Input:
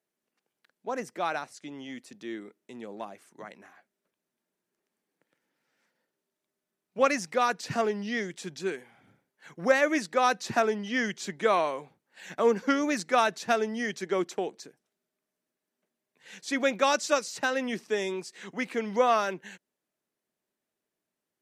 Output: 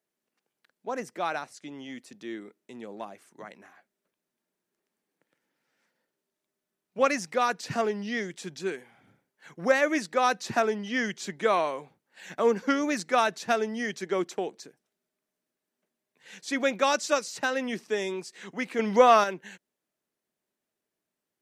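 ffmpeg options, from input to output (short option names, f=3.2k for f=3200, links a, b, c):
-filter_complex "[0:a]asettb=1/sr,asplit=3[a][b][c];[a]atrim=end=18.794[d];[b]atrim=start=18.79:end=19.24,asetpts=PTS-STARTPTS,afade=t=in:d=0.004:c=qsin,afade=t=out:st=0.446:d=0.004:c=qsin,acontrast=47[e];[c]atrim=start=19.236[f];[d][e]acrossfade=d=0.004:c1=hsin:c2=qsin[g];[g][f]acrossfade=d=0.004:c1=qsin:c2=hsin"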